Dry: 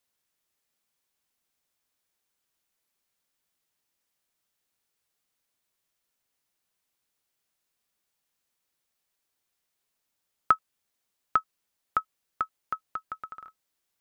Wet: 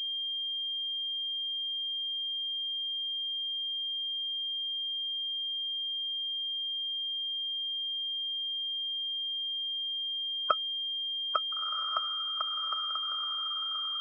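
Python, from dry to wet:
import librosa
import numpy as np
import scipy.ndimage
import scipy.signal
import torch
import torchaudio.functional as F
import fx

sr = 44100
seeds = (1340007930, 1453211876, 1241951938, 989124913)

y = fx.spec_quant(x, sr, step_db=30)
y = scipy.signal.sosfilt(scipy.signal.butter(4, 510.0, 'highpass', fs=sr, output='sos'), y)
y = fx.echo_diffused(y, sr, ms=1382, feedback_pct=41, wet_db=-3.5)
y = fx.pwm(y, sr, carrier_hz=3200.0)
y = y * 10.0 ** (-2.0 / 20.0)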